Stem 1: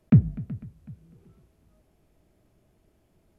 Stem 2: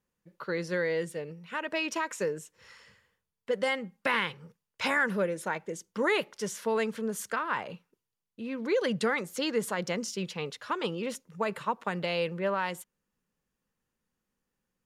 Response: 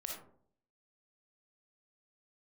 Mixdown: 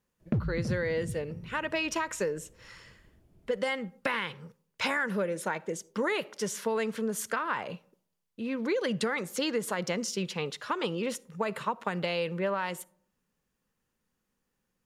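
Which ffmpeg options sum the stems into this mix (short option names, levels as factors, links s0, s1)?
-filter_complex "[0:a]lowshelf=f=360:g=11.5,alimiter=limit=0.596:level=0:latency=1:release=119,volume=2.99,asoftclip=hard,volume=0.335,adelay=200,volume=0.531,asplit=2[s0][s1];[s1]volume=0.224[s2];[1:a]volume=1.33,asplit=2[s3][s4];[s4]volume=0.1[s5];[2:a]atrim=start_sample=2205[s6];[s5][s6]afir=irnorm=-1:irlink=0[s7];[s2]aecho=0:1:326|652|978|1304|1630|1956:1|0.42|0.176|0.0741|0.0311|0.0131[s8];[s0][s3][s7][s8]amix=inputs=4:normalize=0,acompressor=threshold=0.0501:ratio=6"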